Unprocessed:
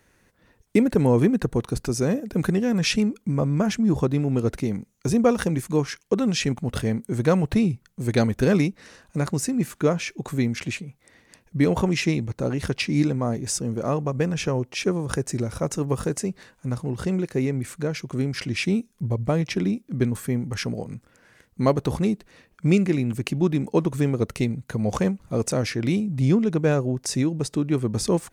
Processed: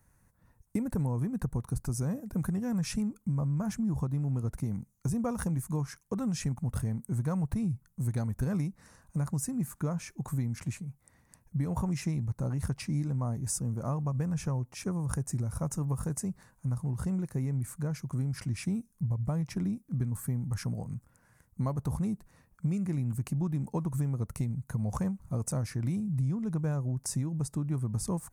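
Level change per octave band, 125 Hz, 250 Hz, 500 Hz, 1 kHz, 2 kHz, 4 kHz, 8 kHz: -5.0, -10.0, -17.5, -11.0, -16.5, -16.5, -7.0 dB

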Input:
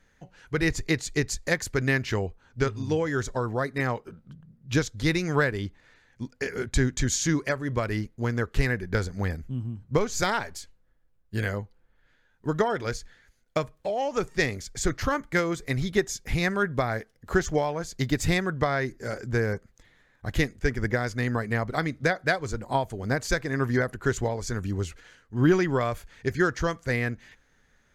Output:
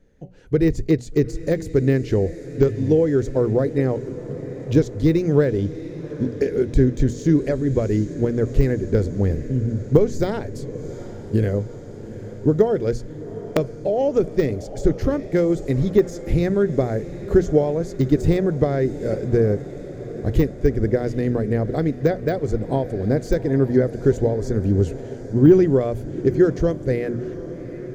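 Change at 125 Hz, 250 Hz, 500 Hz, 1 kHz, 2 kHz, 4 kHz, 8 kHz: +7.5 dB, +9.0 dB, +9.5 dB, -3.0 dB, -8.5 dB, -7.0 dB, n/a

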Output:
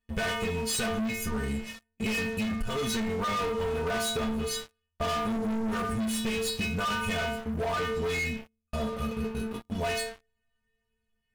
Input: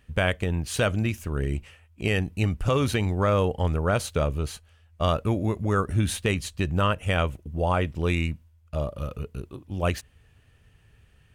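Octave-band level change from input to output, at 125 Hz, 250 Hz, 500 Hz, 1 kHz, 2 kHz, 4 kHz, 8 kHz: -11.5, -1.5, -4.0, -2.5, -1.0, +1.0, +2.0 dB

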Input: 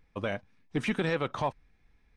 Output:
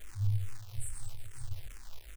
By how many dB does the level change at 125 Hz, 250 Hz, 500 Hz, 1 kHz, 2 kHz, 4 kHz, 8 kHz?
+3.0, -27.0, -33.0, -26.0, -22.0, -13.5, +8.0 dB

